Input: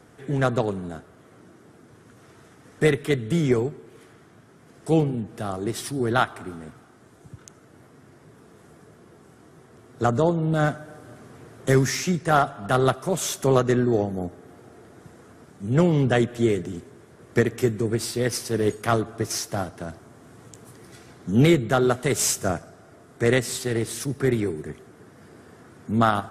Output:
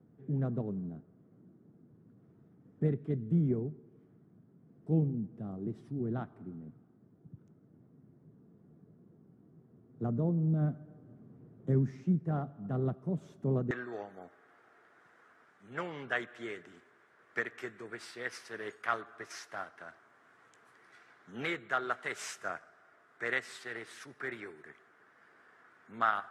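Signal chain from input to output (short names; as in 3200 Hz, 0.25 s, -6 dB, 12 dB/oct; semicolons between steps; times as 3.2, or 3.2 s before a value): band-pass 180 Hz, Q 1.7, from 13.71 s 1600 Hz; gain -4 dB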